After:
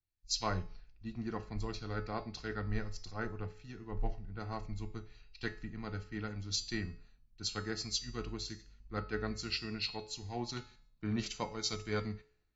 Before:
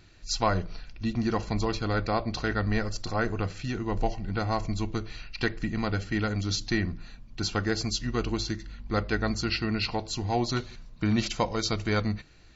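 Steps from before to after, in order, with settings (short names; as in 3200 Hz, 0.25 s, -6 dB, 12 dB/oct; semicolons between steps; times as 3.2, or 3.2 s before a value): dynamic EQ 620 Hz, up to -4 dB, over -42 dBFS, Q 0.82; resonator 430 Hz, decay 0.78 s, mix 80%; de-hum 135 Hz, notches 28; three-band expander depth 100%; gain +3 dB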